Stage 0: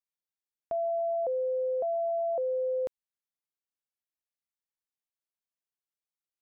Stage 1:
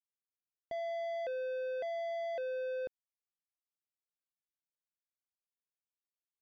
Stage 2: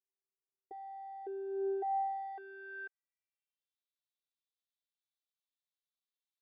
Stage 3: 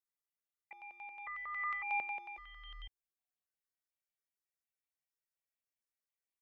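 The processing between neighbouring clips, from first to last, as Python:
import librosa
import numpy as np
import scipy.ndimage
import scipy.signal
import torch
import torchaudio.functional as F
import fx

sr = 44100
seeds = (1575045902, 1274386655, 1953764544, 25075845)

y1 = scipy.signal.sosfilt(scipy.signal.bessel(2, 810.0, 'lowpass', norm='mag', fs=sr, output='sos'), x)
y1 = fx.leveller(y1, sr, passes=2)
y1 = y1 * 10.0 ** (-7.5 / 20.0)
y2 = fx.filter_sweep_bandpass(y1, sr, from_hz=420.0, to_hz=3700.0, start_s=1.46, end_s=3.77, q=5.2)
y2 = fx.robotise(y2, sr, hz=391.0)
y2 = y2 * 10.0 ** (9.5 / 20.0)
y3 = y2 * np.sin(2.0 * np.pi * 1600.0 * np.arange(len(y2)) / sr)
y3 = fx.phaser_held(y3, sr, hz=11.0, low_hz=710.0, high_hz=1500.0)
y3 = y3 * 10.0 ** (2.0 / 20.0)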